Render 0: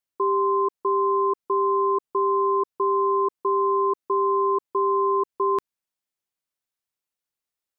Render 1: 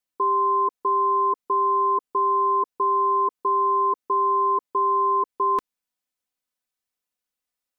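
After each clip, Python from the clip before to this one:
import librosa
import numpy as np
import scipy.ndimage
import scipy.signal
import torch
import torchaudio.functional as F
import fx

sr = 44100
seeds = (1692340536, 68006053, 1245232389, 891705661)

y = x + 0.59 * np.pad(x, (int(4.0 * sr / 1000.0), 0))[:len(x)]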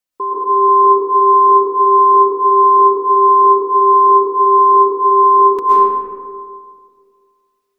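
y = fx.rev_freeverb(x, sr, rt60_s=2.0, hf_ratio=0.4, predelay_ms=90, drr_db=-9.0)
y = F.gain(torch.from_numpy(y), 1.5).numpy()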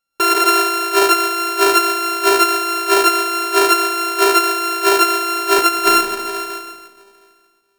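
y = np.r_[np.sort(x[:len(x) // 32 * 32].reshape(-1, 32), axis=1).ravel(), x[len(x) // 32 * 32:]]
y = fx.over_compress(y, sr, threshold_db=-14.0, ratio=-0.5)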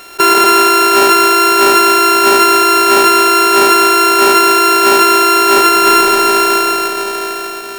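y = fx.bin_compress(x, sr, power=0.4)
y = fx.leveller(y, sr, passes=2)
y = F.gain(torch.from_numpy(y), -2.0).numpy()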